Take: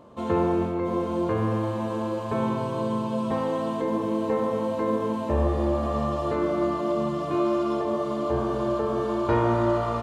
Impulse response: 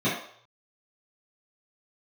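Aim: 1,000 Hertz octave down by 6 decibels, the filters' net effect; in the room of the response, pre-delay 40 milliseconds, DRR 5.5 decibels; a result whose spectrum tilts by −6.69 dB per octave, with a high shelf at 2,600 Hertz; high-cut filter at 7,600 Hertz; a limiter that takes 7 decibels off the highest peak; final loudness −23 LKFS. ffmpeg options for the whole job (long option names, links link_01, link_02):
-filter_complex "[0:a]lowpass=7600,equalizer=frequency=1000:width_type=o:gain=-8.5,highshelf=frequency=2600:gain=7.5,alimiter=limit=-19.5dB:level=0:latency=1,asplit=2[link_01][link_02];[1:a]atrim=start_sample=2205,adelay=40[link_03];[link_02][link_03]afir=irnorm=-1:irlink=0,volume=-19dB[link_04];[link_01][link_04]amix=inputs=2:normalize=0,volume=5.5dB"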